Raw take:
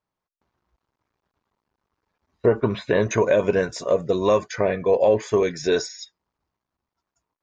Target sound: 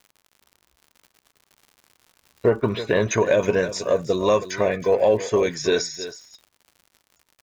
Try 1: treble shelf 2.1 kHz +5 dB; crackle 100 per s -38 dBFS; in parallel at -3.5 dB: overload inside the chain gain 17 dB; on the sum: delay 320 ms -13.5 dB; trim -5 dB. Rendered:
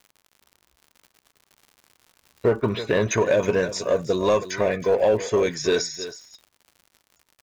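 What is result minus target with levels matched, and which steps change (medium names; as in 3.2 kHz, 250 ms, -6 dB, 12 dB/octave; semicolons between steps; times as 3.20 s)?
overload inside the chain: distortion +21 dB
change: overload inside the chain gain 9.5 dB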